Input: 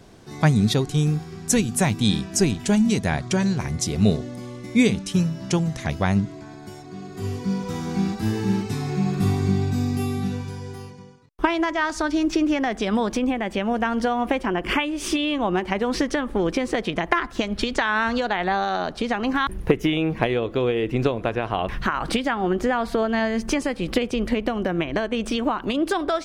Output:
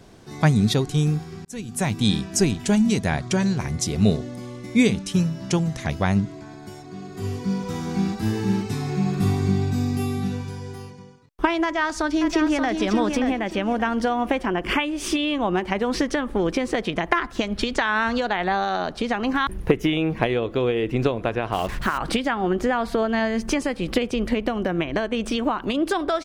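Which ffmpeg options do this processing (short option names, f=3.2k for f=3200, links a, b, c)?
-filter_complex "[0:a]asplit=2[a][b];[b]afade=t=in:st=11.63:d=0.01,afade=t=out:st=12.77:d=0.01,aecho=0:1:580|1160|1740|2320:0.501187|0.150356|0.0451069|0.0135321[c];[a][c]amix=inputs=2:normalize=0,asettb=1/sr,asplit=3[d][e][f];[d]atrim=end=21.524[g];[e]atrim=start=21.52:end=21.98,asetpts=PTS-STARTPTS,afade=t=in:d=0.004:c=qsin,afade=t=out:st=0.456:d=0.004:c=qsin,acrusher=bits=5:mix=0:aa=0.5[h];[f]atrim=start=21.976[i];[g][h]acrossfade=d=0.004:c1=hsin:c2=qsin[j];[j][i]acrossfade=d=0.004:c1=qsin:c2=hsin,asplit=2[k][l];[k]atrim=end=1.45,asetpts=PTS-STARTPTS,afade=t=out:st=1.446:d=0.004:c=hsin[m];[l]atrim=start=1.45,asetpts=PTS-STARTPTS,afade=t=in:d=0.57[n];[m][n]concat=n=2:v=0:a=1"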